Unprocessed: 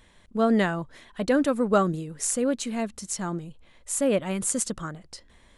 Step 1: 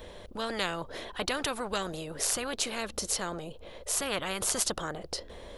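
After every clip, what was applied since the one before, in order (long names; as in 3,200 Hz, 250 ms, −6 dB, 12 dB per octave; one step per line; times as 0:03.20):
graphic EQ with 10 bands 125 Hz −6 dB, 250 Hz −6 dB, 500 Hz +10 dB, 1,000 Hz −4 dB, 2,000 Hz −8 dB, 8,000 Hz −11 dB
every bin compressed towards the loudest bin 4 to 1
level −2.5 dB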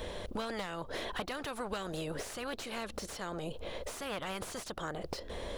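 downward compressor 12 to 1, threshold −39 dBFS, peak gain reduction 15.5 dB
slew-rate limiting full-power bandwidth 21 Hz
level +5.5 dB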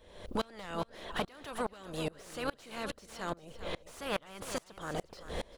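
repeating echo 393 ms, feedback 38%, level −10.5 dB
tremolo with a ramp in dB swelling 2.4 Hz, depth 28 dB
level +7 dB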